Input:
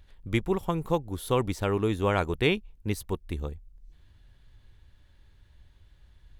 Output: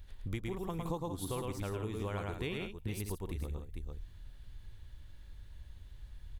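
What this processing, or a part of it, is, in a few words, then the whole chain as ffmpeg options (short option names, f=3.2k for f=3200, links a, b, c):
ASMR close-microphone chain: -filter_complex "[0:a]asettb=1/sr,asplit=3[a][b][c];[a]atrim=end=0.834[d];[b]atrim=start=0.83:end=1.25,asetpts=PTS-STARTPTS,afade=t=in:d=0.004:c=qsin,afade=t=out:st=0.416:d=0.004:c=qsin,equalizer=f=125:t=o:w=1:g=6,equalizer=f=250:t=o:w=1:g=9,equalizer=f=500:t=o:w=1:g=3,equalizer=f=1k:t=o:w=1:g=11,equalizer=f=2k:t=o:w=1:g=-9,equalizer=f=4k:t=o:w=1:g=9,equalizer=f=8k:t=o:w=1:g=7[e];[c]atrim=start=1.246[f];[d][e]acrossfade=d=0.004:c1=hsin:c2=qsin[g];[g][f]acrossfade=d=0.004:c1=qsin:c2=hsin,lowshelf=f=110:g=6.5,aecho=1:1:108|167|448:0.668|0.266|0.224,acompressor=threshold=-34dB:ratio=6,highshelf=f=6.6k:g=7.5,volume=-1.5dB"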